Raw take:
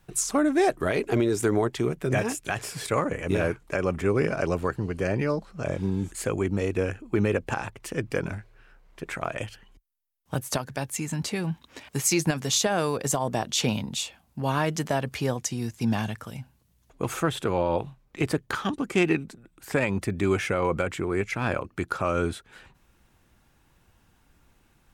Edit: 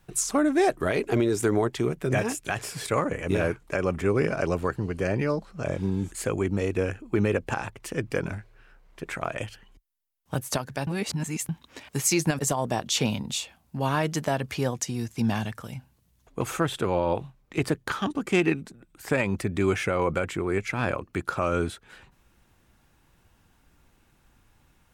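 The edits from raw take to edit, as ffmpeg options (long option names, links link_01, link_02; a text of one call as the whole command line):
ffmpeg -i in.wav -filter_complex "[0:a]asplit=4[link_01][link_02][link_03][link_04];[link_01]atrim=end=10.872[link_05];[link_02]atrim=start=10.868:end=11.492,asetpts=PTS-STARTPTS,areverse[link_06];[link_03]atrim=start=11.488:end=12.392[link_07];[link_04]atrim=start=13.018[link_08];[link_05][link_06]acrossfade=duration=0.004:curve1=hsin:curve2=hsin[link_09];[link_09][link_07]acrossfade=duration=0.004:curve1=hsin:curve2=hsin[link_10];[link_10][link_08]acrossfade=duration=0.004:curve1=hsin:curve2=hsin" out.wav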